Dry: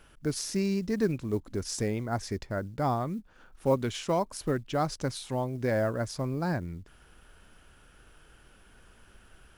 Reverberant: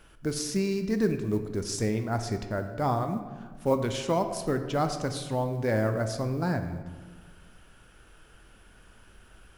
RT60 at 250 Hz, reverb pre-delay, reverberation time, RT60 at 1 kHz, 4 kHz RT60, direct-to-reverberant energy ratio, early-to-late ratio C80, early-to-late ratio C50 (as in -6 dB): 1.5 s, 6 ms, 1.5 s, 1.4 s, 0.90 s, 7.0 dB, 10.5 dB, 9.0 dB